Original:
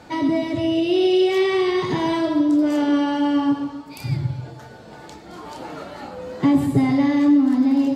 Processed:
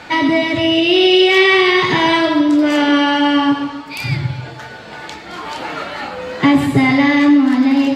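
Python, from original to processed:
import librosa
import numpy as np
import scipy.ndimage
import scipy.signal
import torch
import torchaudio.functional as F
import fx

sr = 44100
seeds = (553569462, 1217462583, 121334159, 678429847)

y = fx.peak_eq(x, sr, hz=2300.0, db=13.5, octaves=2.4)
y = F.gain(torch.from_numpy(y), 3.5).numpy()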